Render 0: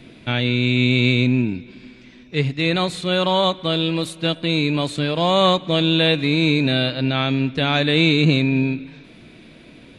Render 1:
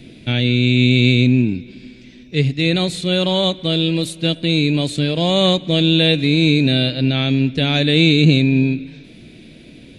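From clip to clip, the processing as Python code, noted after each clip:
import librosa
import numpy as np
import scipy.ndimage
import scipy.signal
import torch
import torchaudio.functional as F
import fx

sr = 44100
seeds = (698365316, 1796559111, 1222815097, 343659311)

y = fx.peak_eq(x, sr, hz=1100.0, db=-14.0, octaves=1.4)
y = F.gain(torch.from_numpy(y), 5.0).numpy()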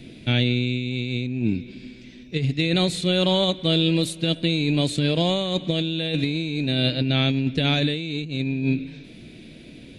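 y = fx.over_compress(x, sr, threshold_db=-17.0, ratio=-0.5)
y = F.gain(torch.from_numpy(y), -4.5).numpy()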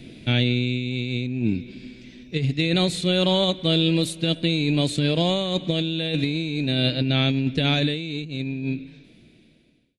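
y = fx.fade_out_tail(x, sr, length_s=2.18)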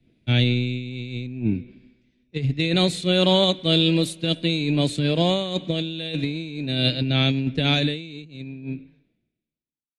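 y = fx.band_widen(x, sr, depth_pct=100)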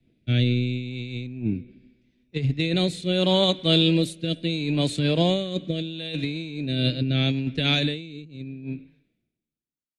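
y = fx.rotary(x, sr, hz=0.75)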